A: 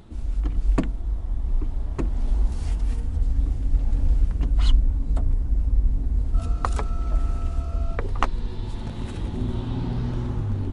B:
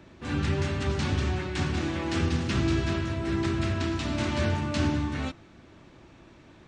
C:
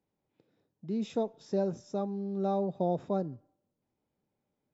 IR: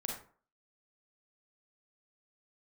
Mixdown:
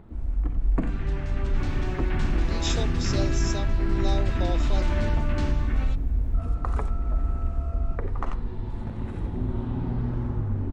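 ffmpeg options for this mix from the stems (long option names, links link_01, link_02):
-filter_complex "[0:a]volume=-2.5dB,asplit=3[link_01][link_02][link_03];[link_02]volume=-14dB[link_04];[link_03]volume=-16.5dB[link_05];[1:a]dynaudnorm=framelen=120:gausssize=17:maxgain=7.5dB,adelay=550,volume=-9dB,asplit=2[link_06][link_07];[link_07]volume=-6dB[link_08];[2:a]highpass=410,aexciter=amount=12.3:drive=2.5:freq=2500,adelay=1600,volume=-1.5dB[link_09];[link_01][link_06]amix=inputs=2:normalize=0,lowpass=frequency=2500:width=0.5412,lowpass=frequency=2500:width=1.3066,alimiter=limit=-17dB:level=0:latency=1:release=33,volume=0dB[link_10];[3:a]atrim=start_sample=2205[link_11];[link_04][link_11]afir=irnorm=-1:irlink=0[link_12];[link_05][link_08]amix=inputs=2:normalize=0,aecho=0:1:90:1[link_13];[link_09][link_10][link_12][link_13]amix=inputs=4:normalize=0"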